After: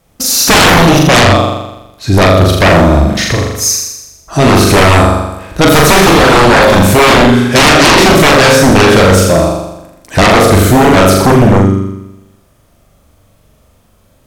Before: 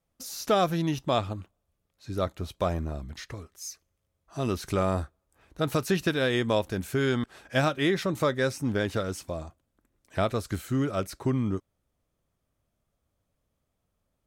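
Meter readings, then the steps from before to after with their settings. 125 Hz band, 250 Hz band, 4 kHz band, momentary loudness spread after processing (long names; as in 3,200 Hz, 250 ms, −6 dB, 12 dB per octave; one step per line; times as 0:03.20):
+22.0 dB, +21.5 dB, +25.5 dB, 10 LU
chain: flutter between parallel walls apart 7.1 metres, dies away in 0.93 s
healed spectral selection 0:05.97–0:06.65, 730–4,800 Hz both
sine wavefolder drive 16 dB, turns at −8 dBFS
level +6 dB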